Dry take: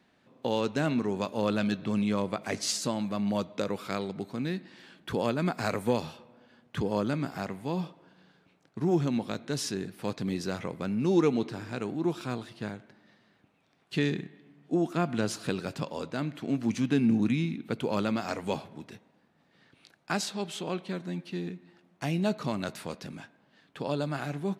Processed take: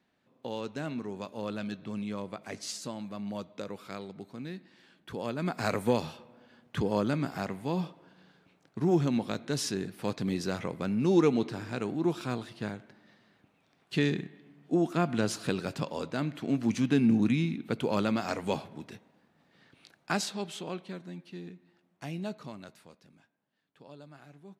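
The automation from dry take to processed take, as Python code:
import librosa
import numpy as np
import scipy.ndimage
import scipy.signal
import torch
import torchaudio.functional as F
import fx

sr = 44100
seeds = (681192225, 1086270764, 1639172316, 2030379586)

y = fx.gain(x, sr, db=fx.line((5.16, -8.0), (5.69, 0.5), (20.11, 0.5), (21.17, -8.0), (22.22, -8.0), (23.03, -19.0)))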